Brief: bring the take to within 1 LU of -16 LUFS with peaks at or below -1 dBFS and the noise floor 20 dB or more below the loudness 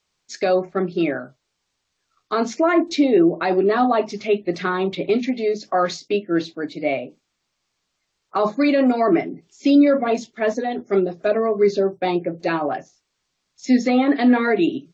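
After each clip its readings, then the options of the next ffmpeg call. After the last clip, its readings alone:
loudness -20.0 LUFS; peak -6.0 dBFS; loudness target -16.0 LUFS
-> -af "volume=4dB"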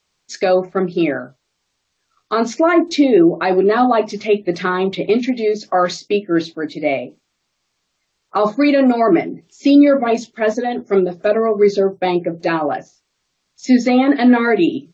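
loudness -16.0 LUFS; peak -2.0 dBFS; noise floor -72 dBFS

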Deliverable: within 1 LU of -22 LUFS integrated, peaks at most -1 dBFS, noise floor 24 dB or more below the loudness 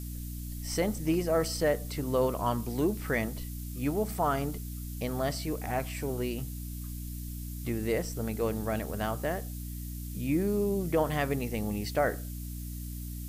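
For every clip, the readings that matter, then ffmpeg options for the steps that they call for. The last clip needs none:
hum 60 Hz; harmonics up to 300 Hz; hum level -36 dBFS; noise floor -39 dBFS; noise floor target -56 dBFS; loudness -32.0 LUFS; peak -14.5 dBFS; loudness target -22.0 LUFS
-> -af "bandreject=f=60:t=h:w=6,bandreject=f=120:t=h:w=6,bandreject=f=180:t=h:w=6,bandreject=f=240:t=h:w=6,bandreject=f=300:t=h:w=6"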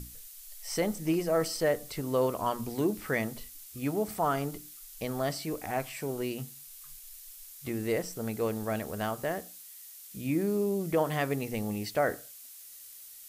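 hum none; noise floor -49 dBFS; noise floor target -56 dBFS
-> -af "afftdn=nr=7:nf=-49"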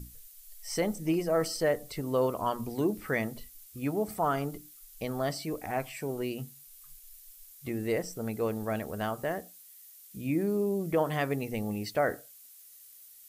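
noise floor -53 dBFS; noise floor target -56 dBFS
-> -af "afftdn=nr=6:nf=-53"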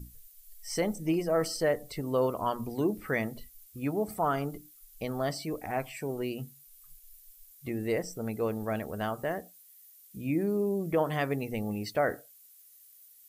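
noise floor -57 dBFS; loudness -32.0 LUFS; peak -16.0 dBFS; loudness target -22.0 LUFS
-> -af "volume=10dB"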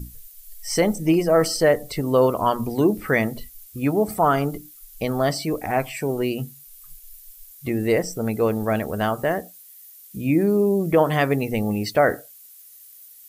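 loudness -22.0 LUFS; peak -6.0 dBFS; noise floor -47 dBFS

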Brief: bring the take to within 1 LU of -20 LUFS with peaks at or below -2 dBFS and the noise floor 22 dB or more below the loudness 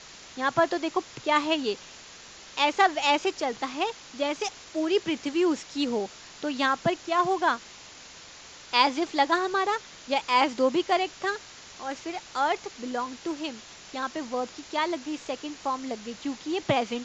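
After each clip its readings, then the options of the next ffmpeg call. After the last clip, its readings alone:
noise floor -47 dBFS; noise floor target -50 dBFS; loudness -27.5 LUFS; peak -5.0 dBFS; loudness target -20.0 LUFS
-> -af "afftdn=nr=6:nf=-47"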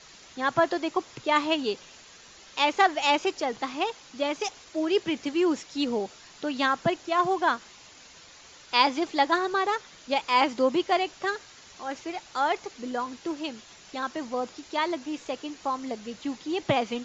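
noise floor -51 dBFS; loudness -27.5 LUFS; peak -5.0 dBFS; loudness target -20.0 LUFS
-> -af "volume=7.5dB,alimiter=limit=-2dB:level=0:latency=1"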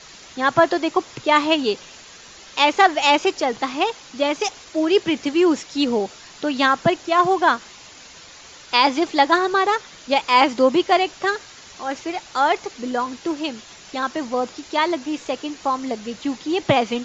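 loudness -20.5 LUFS; peak -2.0 dBFS; noise floor -44 dBFS

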